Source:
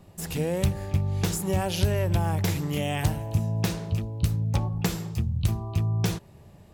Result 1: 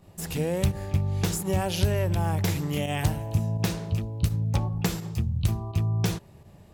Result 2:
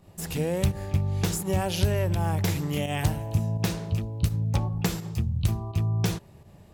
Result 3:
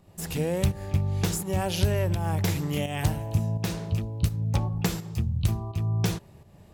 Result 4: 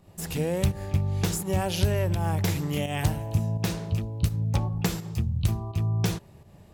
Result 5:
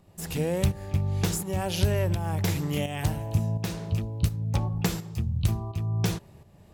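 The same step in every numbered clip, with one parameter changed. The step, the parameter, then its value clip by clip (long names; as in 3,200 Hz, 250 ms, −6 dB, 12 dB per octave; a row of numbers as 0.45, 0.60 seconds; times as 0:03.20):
fake sidechain pumping, release: 66, 98, 281, 164, 530 milliseconds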